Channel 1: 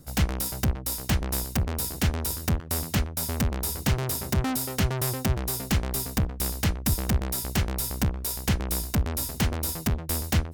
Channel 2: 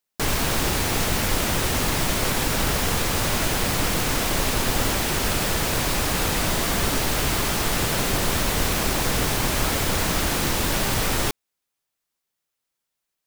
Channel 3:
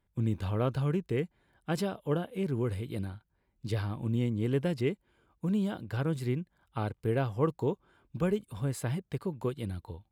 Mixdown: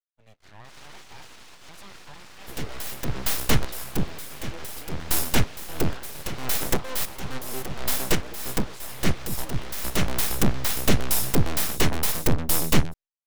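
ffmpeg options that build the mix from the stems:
-filter_complex "[0:a]bandreject=f=4.7k:w=12,aphaser=in_gain=1:out_gain=1:delay=3.8:decay=0.2:speed=0.59:type=triangular,adelay=2400,volume=1dB[a];[1:a]alimiter=limit=-20dB:level=0:latency=1:release=489,adelay=450,volume=-14.5dB[b];[2:a]highshelf=f=2.2k:g=-8,alimiter=limit=-23.5dB:level=0:latency=1:release=312,crystalizer=i=9.5:c=0,volume=-11dB,asplit=2[c][d];[d]apad=whole_len=570566[e];[a][e]sidechaincompress=threshold=-52dB:ratio=16:attack=10:release=146[f];[b][c]amix=inputs=2:normalize=0,acrossover=split=330 6000:gain=0.0891 1 0.0891[g][h][i];[g][h][i]amix=inputs=3:normalize=0,alimiter=level_in=15dB:limit=-24dB:level=0:latency=1:release=18,volume=-15dB,volume=0dB[j];[f][j]amix=inputs=2:normalize=0,acontrast=79,agate=range=-33dB:threshold=-39dB:ratio=3:detection=peak,aeval=exprs='abs(val(0))':c=same"

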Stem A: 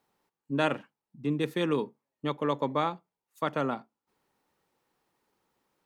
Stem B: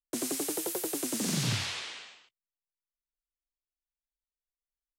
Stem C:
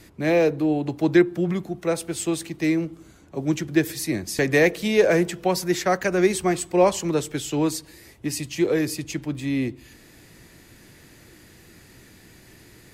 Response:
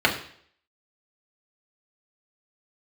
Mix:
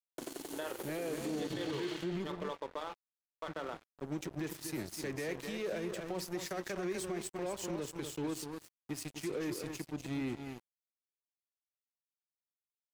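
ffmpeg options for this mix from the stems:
-filter_complex "[0:a]highpass=420,alimiter=limit=-19.5dB:level=0:latency=1:release=288,volume=-6dB,asplit=3[a][b][c];[b]volume=-19dB[d];[c]volume=-22dB[e];[1:a]acompressor=threshold=-35dB:ratio=16,adelay=50,volume=-6.5dB,asplit=2[f][g];[g]volume=-11dB[h];[2:a]alimiter=limit=-16.5dB:level=0:latency=1:release=51,adelay=650,volume=-8.5dB,asplit=3[i][j][k];[i]atrim=end=2.32,asetpts=PTS-STARTPTS,afade=t=out:st=2.316:d=0.004:c=hsin[l];[j]atrim=start=2.32:end=3.48,asetpts=PTS-STARTPTS,volume=0[m];[k]atrim=start=3.48,asetpts=PTS-STARTPTS,afade=t=in:d=0.004:c=hsin[n];[l][m][n]concat=n=3:v=0:a=1,asplit=2[o][p];[p]volume=-7dB[q];[3:a]atrim=start_sample=2205[r];[d][h]amix=inputs=2:normalize=0[s];[s][r]afir=irnorm=-1:irlink=0[t];[e][q]amix=inputs=2:normalize=0,aecho=0:1:248:1[u];[a][f][o][t][u]amix=inputs=5:normalize=0,adynamicequalizer=threshold=0.0112:dfrequency=390:dqfactor=3:tfrequency=390:tqfactor=3:attack=5:release=100:ratio=0.375:range=2:mode=boostabove:tftype=bell,aeval=exprs='sgn(val(0))*max(abs(val(0))-0.00841,0)':c=same,alimiter=level_in=5dB:limit=-24dB:level=0:latency=1:release=65,volume=-5dB"

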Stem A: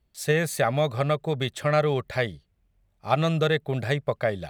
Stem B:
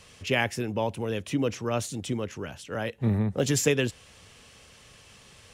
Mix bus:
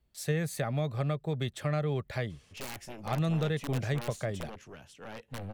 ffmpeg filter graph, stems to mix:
-filter_complex "[0:a]acrossover=split=290[a][b];[b]acompressor=threshold=-37dB:ratio=2[c];[a][c]amix=inputs=2:normalize=0,volume=-3dB[d];[1:a]aeval=exprs='0.355*(cos(1*acos(clip(val(0)/0.355,-1,1)))-cos(1*PI/2))+0.0891*(cos(3*acos(clip(val(0)/0.355,-1,1)))-cos(3*PI/2))+0.0631*(cos(4*acos(clip(val(0)/0.355,-1,1)))-cos(4*PI/2))+0.0398*(cos(7*acos(clip(val(0)/0.355,-1,1)))-cos(7*PI/2))':c=same,aeval=exprs='(mod(17.8*val(0)+1,2)-1)/17.8':c=same,adelay=2300,volume=-5.5dB[e];[d][e]amix=inputs=2:normalize=0"

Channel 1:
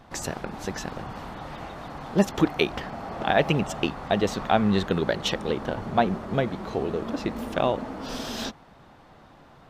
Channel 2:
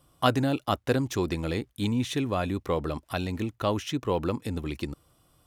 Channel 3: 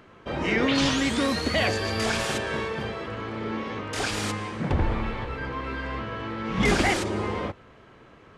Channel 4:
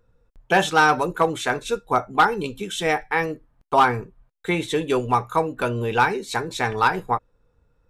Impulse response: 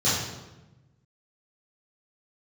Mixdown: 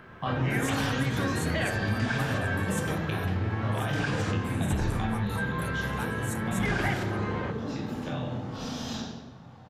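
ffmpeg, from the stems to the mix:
-filter_complex "[0:a]acrossover=split=400|1400[a][b][c];[a]acompressor=threshold=-27dB:ratio=4[d];[b]acompressor=threshold=-37dB:ratio=4[e];[c]acompressor=threshold=-34dB:ratio=4[f];[d][e][f]amix=inputs=3:normalize=0,adelay=500,volume=-1.5dB,asplit=2[g][h];[h]volume=-16.5dB[i];[1:a]lowpass=3.1k,acompressor=threshold=-34dB:ratio=2,volume=-3.5dB,asplit=3[j][k][l];[k]volume=-7.5dB[m];[2:a]lowpass=f=2.8k:p=1,equalizer=f=1.6k:w=5.1:g=9.5,volume=1.5dB,asplit=2[n][o];[o]volume=-23dB[p];[3:a]aexciter=amount=14.2:drive=4.3:freq=6.7k,volume=-15.5dB[q];[l]apad=whole_len=449450[r];[g][r]sidechaingate=range=-8dB:threshold=-60dB:ratio=16:detection=peak[s];[4:a]atrim=start_sample=2205[t];[i][m][p]amix=inputs=3:normalize=0[u];[u][t]afir=irnorm=-1:irlink=0[v];[s][j][n][q][v]amix=inputs=5:normalize=0,acompressor=threshold=-31dB:ratio=2"

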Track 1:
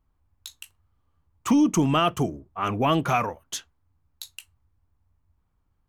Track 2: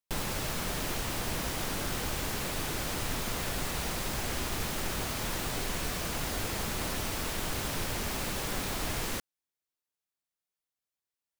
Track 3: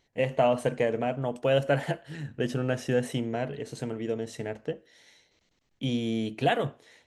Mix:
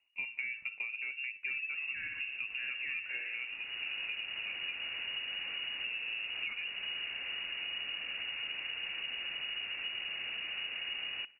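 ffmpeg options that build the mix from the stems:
-filter_complex "[0:a]volume=-11.5dB,asplit=3[a][b][c];[b]volume=-5.5dB[d];[1:a]adelay=2050,volume=-2dB,asplit=2[e][f];[f]volume=-23.5dB[g];[2:a]volume=-6dB[h];[c]apad=whole_len=593130[i];[e][i]sidechaincompress=threshold=-45dB:ratio=8:attack=22:release=637[j];[d][g]amix=inputs=2:normalize=0,aecho=0:1:60|120|180|240|300|360|420|480|540:1|0.59|0.348|0.205|0.121|0.0715|0.0422|0.0249|0.0147[k];[a][j][h][k]amix=inputs=4:normalize=0,equalizer=f=1.9k:w=1.3:g=-12,lowpass=f=2.5k:t=q:w=0.5098,lowpass=f=2.5k:t=q:w=0.6013,lowpass=f=2.5k:t=q:w=0.9,lowpass=f=2.5k:t=q:w=2.563,afreqshift=-2900,acompressor=threshold=-35dB:ratio=10"

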